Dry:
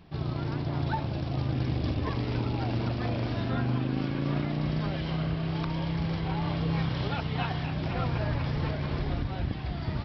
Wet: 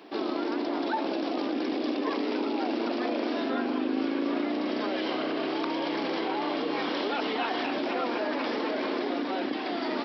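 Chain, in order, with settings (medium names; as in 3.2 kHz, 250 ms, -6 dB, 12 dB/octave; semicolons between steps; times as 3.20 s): steep high-pass 250 Hz 48 dB/octave; peaking EQ 350 Hz +4 dB 1.7 oct; in parallel at 0 dB: compressor with a negative ratio -38 dBFS, ratio -1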